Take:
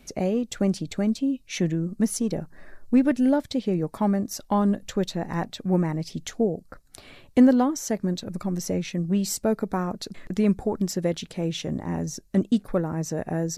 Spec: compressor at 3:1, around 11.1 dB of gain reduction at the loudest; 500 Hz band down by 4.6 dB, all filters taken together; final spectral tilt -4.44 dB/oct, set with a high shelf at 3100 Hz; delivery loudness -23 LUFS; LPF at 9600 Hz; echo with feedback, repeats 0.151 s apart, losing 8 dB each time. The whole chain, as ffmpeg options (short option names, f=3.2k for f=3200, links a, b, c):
-af "lowpass=9.6k,equalizer=f=500:t=o:g=-6,highshelf=f=3.1k:g=6.5,acompressor=threshold=-28dB:ratio=3,aecho=1:1:151|302|453|604|755:0.398|0.159|0.0637|0.0255|0.0102,volume=8dB"